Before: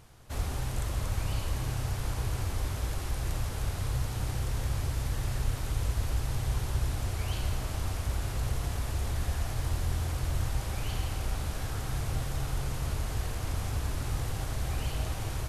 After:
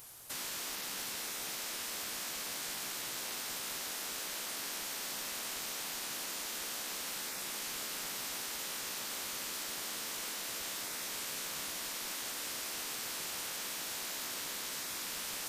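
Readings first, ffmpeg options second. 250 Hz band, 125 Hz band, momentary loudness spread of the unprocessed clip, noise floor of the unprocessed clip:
−10.5 dB, −32.0 dB, 2 LU, −36 dBFS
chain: -af "aemphasis=mode=production:type=riaa,afftfilt=real='re*lt(hypot(re,im),0.02)':imag='im*lt(hypot(re,im),0.02)':win_size=1024:overlap=0.75"

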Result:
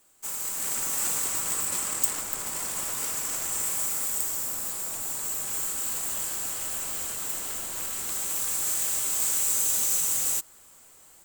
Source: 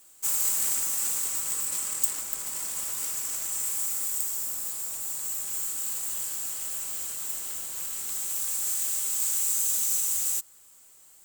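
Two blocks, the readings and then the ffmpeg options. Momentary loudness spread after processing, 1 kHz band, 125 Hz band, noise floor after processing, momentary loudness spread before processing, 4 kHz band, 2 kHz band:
8 LU, +7.0 dB, can't be measured, −54 dBFS, 8 LU, +2.5 dB, +5.5 dB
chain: -af "highshelf=frequency=2900:gain=-8.5,dynaudnorm=framelen=510:gausssize=3:maxgain=9dB"

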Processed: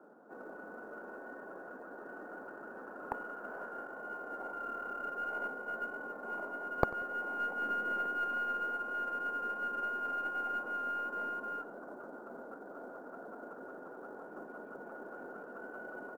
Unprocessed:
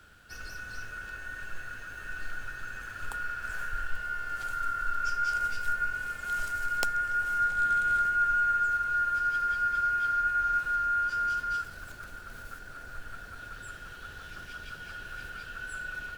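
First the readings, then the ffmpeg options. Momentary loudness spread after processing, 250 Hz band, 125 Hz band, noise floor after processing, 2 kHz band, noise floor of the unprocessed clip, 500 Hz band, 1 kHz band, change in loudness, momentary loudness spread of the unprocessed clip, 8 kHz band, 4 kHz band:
14 LU, can't be measured, −8.0 dB, −50 dBFS, −9.5 dB, −46 dBFS, +10.0 dB, −8.5 dB, −10.0 dB, 18 LU, below −20 dB, −11.5 dB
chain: -filter_complex "[0:a]highpass=frequency=340:poles=1,acrossover=split=800[link_01][link_02];[link_01]acontrast=71[link_03];[link_03][link_02]amix=inputs=2:normalize=0,asuperpass=centerf=470:order=8:qfactor=0.58,aeval=exprs='0.133*(cos(1*acos(clip(val(0)/0.133,-1,1)))-cos(1*PI/2))+0.0596*(cos(2*acos(clip(val(0)/0.133,-1,1)))-cos(2*PI/2))+0.00376*(cos(5*acos(clip(val(0)/0.133,-1,1)))-cos(5*PI/2))+0.00473*(cos(7*acos(clip(val(0)/0.133,-1,1)))-cos(7*PI/2))':channel_layout=same,aecho=1:1:93|186|279:0.0891|0.033|0.0122,acrusher=bits=9:mode=log:mix=0:aa=0.000001,volume=6.5dB"

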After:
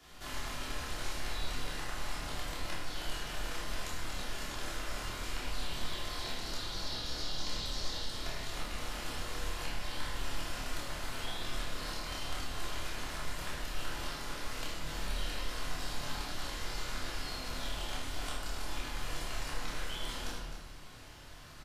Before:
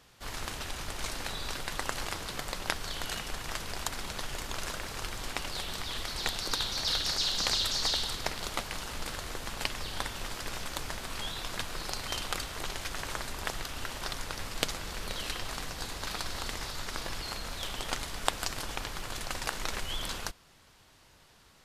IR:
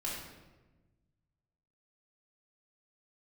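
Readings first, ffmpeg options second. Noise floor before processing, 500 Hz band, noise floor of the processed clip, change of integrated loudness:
−60 dBFS, −3.5 dB, −47 dBFS, −5.0 dB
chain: -filter_complex "[0:a]acrossover=split=240|870[link_01][link_02][link_03];[link_01]acompressor=threshold=-51dB:ratio=4[link_04];[link_02]acompressor=threshold=-56dB:ratio=4[link_05];[link_03]acompressor=threshold=-48dB:ratio=4[link_06];[link_04][link_05][link_06]amix=inputs=3:normalize=0,asplit=2[link_07][link_08];[link_08]adelay=27,volume=-4dB[link_09];[link_07][link_09]amix=inputs=2:normalize=0,aecho=1:1:78.72|259.5:0.282|0.316[link_10];[1:a]atrim=start_sample=2205[link_11];[link_10][link_11]afir=irnorm=-1:irlink=0,volume=2dB"

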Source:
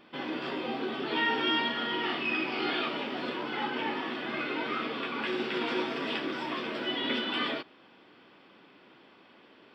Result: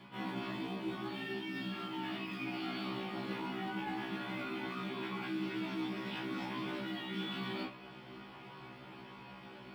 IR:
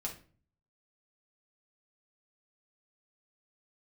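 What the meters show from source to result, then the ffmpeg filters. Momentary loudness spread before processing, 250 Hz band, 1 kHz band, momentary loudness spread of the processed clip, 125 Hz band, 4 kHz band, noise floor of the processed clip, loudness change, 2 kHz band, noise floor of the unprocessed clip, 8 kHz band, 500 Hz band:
6 LU, −4.0 dB, −9.0 dB, 12 LU, +4.0 dB, −11.5 dB, −52 dBFS, −8.5 dB, −10.5 dB, −58 dBFS, can't be measured, −9.5 dB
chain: -filter_complex "[0:a]acrossover=split=410|3000[link_01][link_02][link_03];[link_02]acompressor=threshold=-35dB:ratio=6[link_04];[link_01][link_04][link_03]amix=inputs=3:normalize=0,asplit=2[link_05][link_06];[link_06]acrusher=bits=3:mode=log:mix=0:aa=0.000001,volume=-10dB[link_07];[link_05][link_07]amix=inputs=2:normalize=0[link_08];[1:a]atrim=start_sample=2205,atrim=end_sample=3528[link_09];[link_08][link_09]afir=irnorm=-1:irlink=0,afreqshift=-49,areverse,acompressor=threshold=-40dB:ratio=12,areverse,afftfilt=real='re*1.73*eq(mod(b,3),0)':imag='im*1.73*eq(mod(b,3),0)':win_size=2048:overlap=0.75,volume=5dB"

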